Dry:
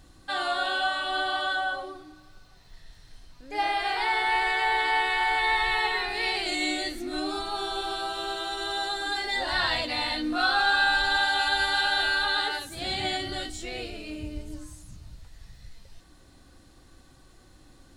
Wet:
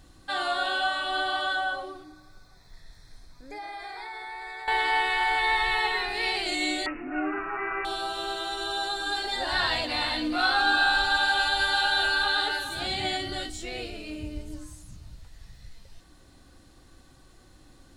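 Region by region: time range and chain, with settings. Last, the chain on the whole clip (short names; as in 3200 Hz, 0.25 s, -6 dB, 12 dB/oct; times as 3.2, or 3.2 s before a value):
2.04–4.68 compressor, threshold -36 dBFS + Butterworth band-stop 2900 Hz, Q 3.4
6.86–7.85 low shelf 120 Hz -9.5 dB + comb 6.9 ms, depth 66% + careless resampling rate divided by 8×, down none, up filtered
8.57–12.87 notch 2000 Hz, Q 21 + echo 0.425 s -9.5 dB
whole clip: dry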